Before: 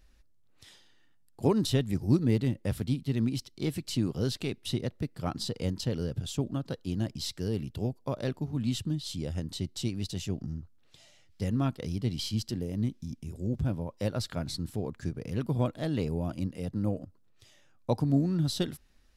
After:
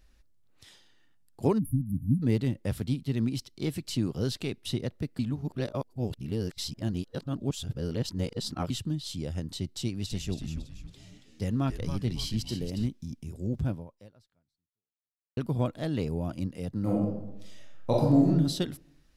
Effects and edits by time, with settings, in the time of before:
0:01.58–0:02.22: time-frequency box erased 280–9,300 Hz
0:05.19–0:08.70: reverse
0:09.67–0:12.87: echo with shifted repeats 278 ms, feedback 36%, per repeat −130 Hz, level −7.5 dB
0:13.70–0:15.37: fade out exponential
0:16.79–0:18.26: thrown reverb, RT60 0.88 s, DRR −4 dB

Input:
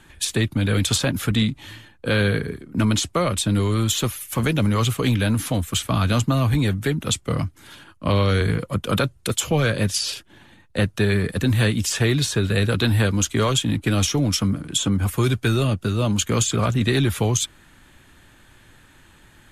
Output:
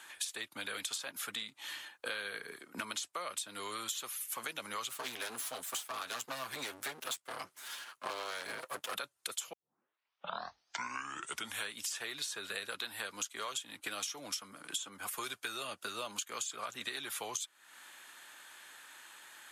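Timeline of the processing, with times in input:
0:04.89–0:08.95: lower of the sound and its delayed copy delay 7.8 ms
0:09.53: tape start 2.22 s
whole clip: high-pass filter 1,000 Hz 12 dB per octave; parametric band 2,300 Hz −4 dB 1.9 octaves; downward compressor 6 to 1, threshold −42 dBFS; level +4 dB

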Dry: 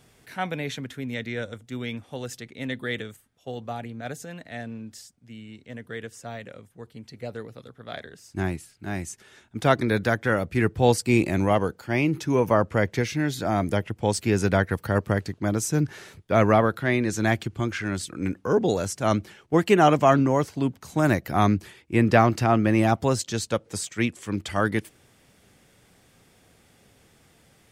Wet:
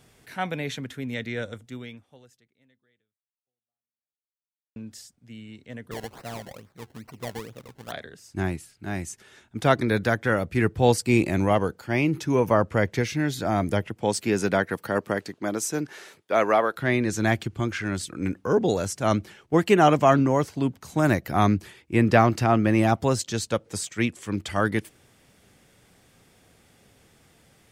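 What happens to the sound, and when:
0:01.62–0:04.76: fade out exponential
0:05.91–0:07.92: sample-and-hold swept by an LFO 25× 2.3 Hz
0:13.89–0:16.76: high-pass filter 140 Hz → 440 Hz

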